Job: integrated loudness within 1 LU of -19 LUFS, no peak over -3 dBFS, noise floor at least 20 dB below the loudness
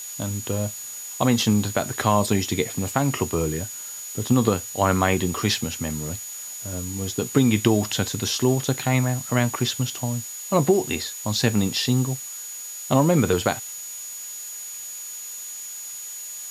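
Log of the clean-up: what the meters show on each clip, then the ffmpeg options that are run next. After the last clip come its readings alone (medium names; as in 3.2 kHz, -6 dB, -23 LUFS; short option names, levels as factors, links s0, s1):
steady tone 6.8 kHz; tone level -34 dBFS; noise floor -36 dBFS; noise floor target -44 dBFS; loudness -24.0 LUFS; peak level -4.5 dBFS; loudness target -19.0 LUFS
-> -af "bandreject=f=6800:w=30"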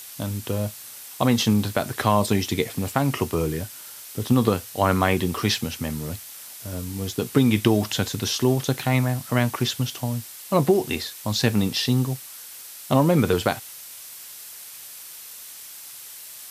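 steady tone not found; noise floor -41 dBFS; noise floor target -44 dBFS
-> -af "afftdn=nr=6:nf=-41"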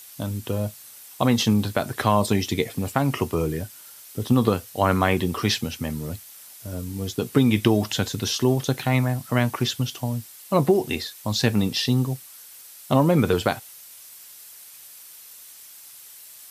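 noise floor -45 dBFS; loudness -23.5 LUFS; peak level -4.5 dBFS; loudness target -19.0 LUFS
-> -af "volume=1.68,alimiter=limit=0.708:level=0:latency=1"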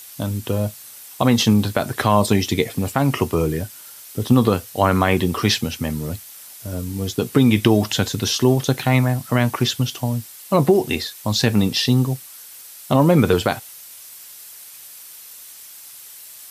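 loudness -19.5 LUFS; peak level -3.0 dBFS; noise floor -41 dBFS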